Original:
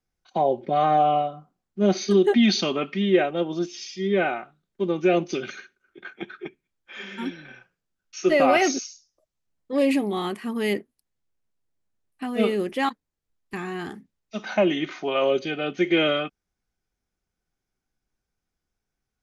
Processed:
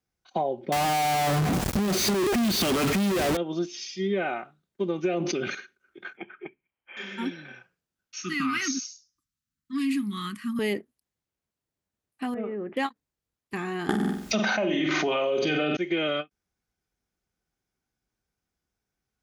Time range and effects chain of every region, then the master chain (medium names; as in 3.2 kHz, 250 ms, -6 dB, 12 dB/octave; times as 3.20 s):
0.72–3.37 s: one-bit comparator + bass shelf 340 Hz +8.5 dB
5.14–5.55 s: treble shelf 4.2 kHz -11.5 dB + decay stretcher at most 47 dB/s
6.17–6.97 s: rippled Chebyshev low-pass 3.2 kHz, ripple 6 dB + tape noise reduction on one side only encoder only
8.22–10.59 s: Chebyshev band-stop 270–1200 Hz, order 3 + peaking EQ 2.4 kHz -3.5 dB 0.82 oct
12.34–12.77 s: low-pass 1.8 kHz 24 dB/octave + compression 2.5:1, threshold -33 dBFS
13.89–15.77 s: flutter echo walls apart 7.9 m, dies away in 0.4 s + level flattener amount 100%
whole clip: high-pass 47 Hz; compression, threshold -23 dBFS; endings held to a fixed fall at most 520 dB/s